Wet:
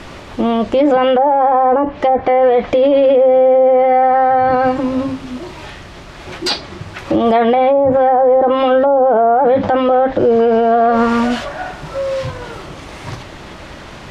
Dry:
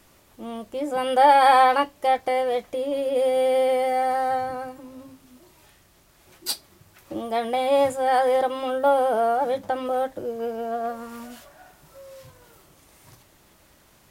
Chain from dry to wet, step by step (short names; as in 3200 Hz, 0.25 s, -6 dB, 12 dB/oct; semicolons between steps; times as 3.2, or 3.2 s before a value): treble ducked by the level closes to 640 Hz, closed at -16 dBFS; LPF 3800 Hz 12 dB/oct; maximiser +29.5 dB; gain -4.5 dB